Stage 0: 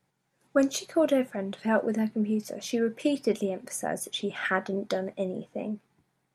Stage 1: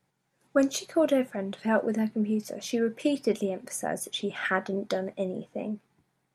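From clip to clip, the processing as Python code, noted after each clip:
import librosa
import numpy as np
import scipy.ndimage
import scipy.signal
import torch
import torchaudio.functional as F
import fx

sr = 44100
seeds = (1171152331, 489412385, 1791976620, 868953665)

y = x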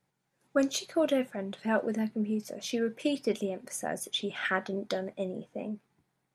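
y = fx.dynamic_eq(x, sr, hz=3500.0, q=0.95, threshold_db=-45.0, ratio=4.0, max_db=5)
y = y * librosa.db_to_amplitude(-3.5)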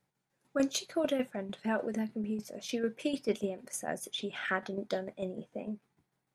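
y = fx.tremolo_shape(x, sr, shape='saw_down', hz=6.7, depth_pct=60)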